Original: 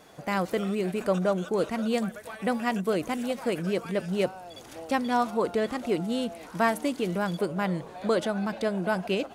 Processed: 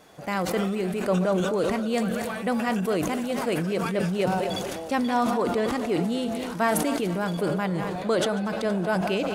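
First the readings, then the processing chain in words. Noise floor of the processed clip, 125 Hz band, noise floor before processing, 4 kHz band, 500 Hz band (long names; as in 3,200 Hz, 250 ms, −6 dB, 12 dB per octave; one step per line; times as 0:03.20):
−34 dBFS, +4.0 dB, −46 dBFS, +3.5 dB, +2.0 dB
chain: feedback delay that plays each chunk backwards 117 ms, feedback 65%, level −13 dB
level that may fall only so fast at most 22 dB per second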